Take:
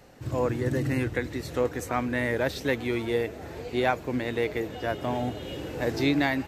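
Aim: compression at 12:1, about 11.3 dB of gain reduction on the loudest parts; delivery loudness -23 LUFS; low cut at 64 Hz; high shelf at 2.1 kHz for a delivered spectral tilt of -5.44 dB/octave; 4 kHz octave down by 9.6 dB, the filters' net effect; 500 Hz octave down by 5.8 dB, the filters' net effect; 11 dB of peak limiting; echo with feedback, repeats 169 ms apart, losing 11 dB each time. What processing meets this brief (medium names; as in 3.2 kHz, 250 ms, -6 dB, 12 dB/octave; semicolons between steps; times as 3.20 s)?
high-pass 64 Hz; peaking EQ 500 Hz -6.5 dB; treble shelf 2.1 kHz -8.5 dB; peaking EQ 4 kHz -4 dB; compression 12:1, threshold -34 dBFS; peak limiter -32.5 dBFS; feedback delay 169 ms, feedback 28%, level -11 dB; trim +19.5 dB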